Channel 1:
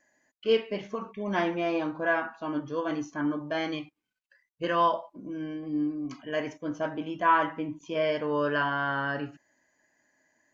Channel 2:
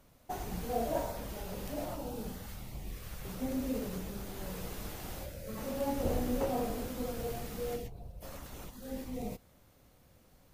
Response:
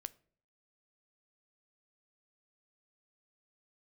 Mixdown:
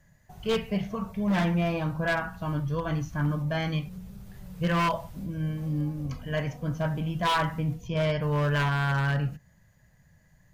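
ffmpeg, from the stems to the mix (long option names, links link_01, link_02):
-filter_complex "[0:a]volume=-1dB,asplit=2[link_01][link_02];[link_02]volume=-10dB[link_03];[1:a]acompressor=threshold=-42dB:ratio=2.5,volume=-11dB,asplit=2[link_04][link_05];[link_05]volume=-3.5dB[link_06];[2:a]atrim=start_sample=2205[link_07];[link_03][link_06]amix=inputs=2:normalize=0[link_08];[link_08][link_07]afir=irnorm=-1:irlink=0[link_09];[link_01][link_04][link_09]amix=inputs=3:normalize=0,lowshelf=frequency=220:width_type=q:width=3:gain=9.5,aeval=exprs='0.112*(abs(mod(val(0)/0.112+3,4)-2)-1)':channel_layout=same"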